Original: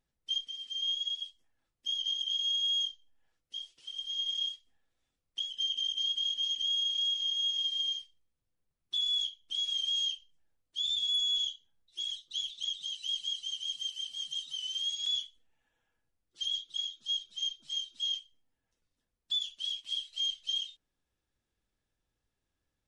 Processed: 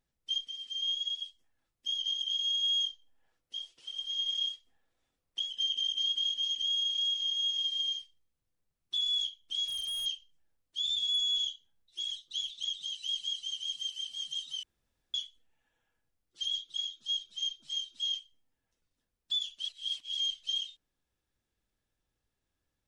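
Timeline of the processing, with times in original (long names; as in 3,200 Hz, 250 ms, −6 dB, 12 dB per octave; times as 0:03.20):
0:02.63–0:06.30: parametric band 660 Hz +5 dB 2.9 octaves
0:09.65–0:10.06: hard clipping −34 dBFS
0:14.63–0:15.14: fill with room tone
0:19.68–0:20.17: reverse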